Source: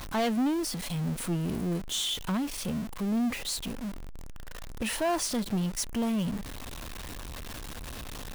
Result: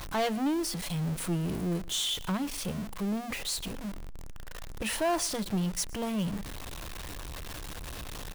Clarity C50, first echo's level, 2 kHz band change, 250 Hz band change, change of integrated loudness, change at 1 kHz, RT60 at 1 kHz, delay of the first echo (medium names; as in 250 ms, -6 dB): no reverb, -23.0 dB, 0.0 dB, -2.5 dB, -1.0 dB, 0.0 dB, no reverb, 119 ms